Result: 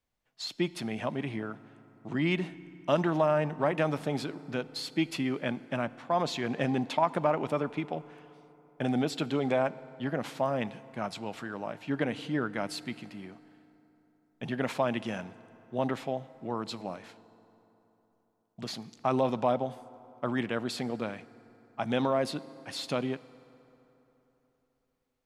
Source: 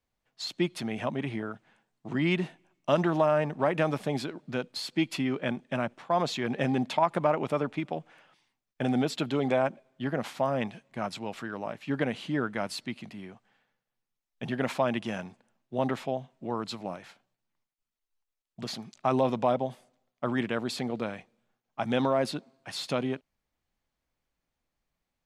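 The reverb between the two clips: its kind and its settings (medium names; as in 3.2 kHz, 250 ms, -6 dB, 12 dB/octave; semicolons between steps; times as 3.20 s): FDN reverb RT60 3.6 s, high-frequency decay 0.55×, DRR 17 dB; trim -1.5 dB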